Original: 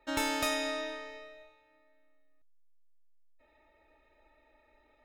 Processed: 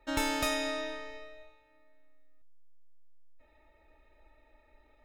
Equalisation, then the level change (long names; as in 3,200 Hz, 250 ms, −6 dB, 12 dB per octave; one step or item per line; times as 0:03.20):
low-shelf EQ 110 Hz +10 dB
0.0 dB